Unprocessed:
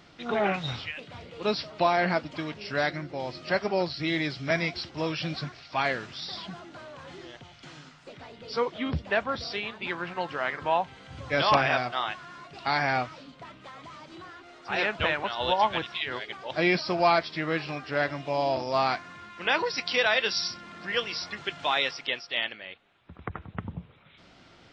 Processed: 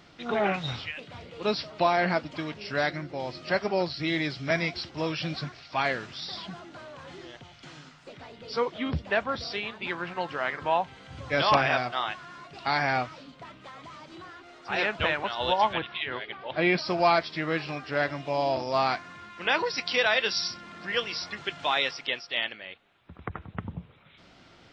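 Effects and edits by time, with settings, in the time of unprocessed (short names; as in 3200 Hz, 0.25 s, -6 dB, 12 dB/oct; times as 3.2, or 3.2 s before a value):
15.73–16.78 LPF 3700 Hz 24 dB/oct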